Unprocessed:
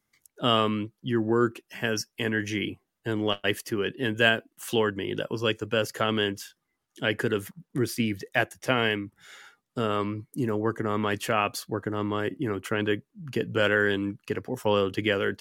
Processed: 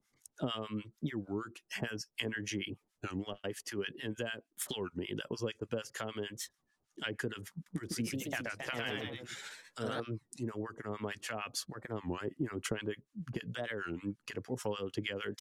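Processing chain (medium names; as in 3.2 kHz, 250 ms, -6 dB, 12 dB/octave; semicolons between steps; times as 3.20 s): low-pass 8.8 kHz 12 dB/octave; tone controls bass +1 dB, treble +6 dB; compression 10:1, threshold -33 dBFS, peak gain reduction 18.5 dB; harmonic tremolo 6.6 Hz, depth 100%, crossover 950 Hz; 7.49–10.01 s: ever faster or slower copies 171 ms, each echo +1 st, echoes 3; warped record 33 1/3 rpm, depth 250 cents; trim +3 dB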